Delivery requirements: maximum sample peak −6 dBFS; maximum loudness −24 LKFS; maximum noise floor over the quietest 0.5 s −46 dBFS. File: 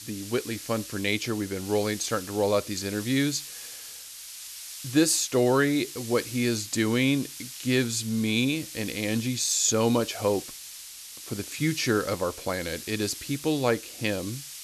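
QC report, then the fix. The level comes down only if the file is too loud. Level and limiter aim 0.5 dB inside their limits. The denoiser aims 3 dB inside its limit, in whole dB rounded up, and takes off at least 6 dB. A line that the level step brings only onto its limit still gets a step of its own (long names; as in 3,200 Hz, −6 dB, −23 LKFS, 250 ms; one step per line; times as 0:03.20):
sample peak −10.5 dBFS: in spec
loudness −26.5 LKFS: in spec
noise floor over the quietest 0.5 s −43 dBFS: out of spec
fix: broadband denoise 6 dB, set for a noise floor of −43 dBFS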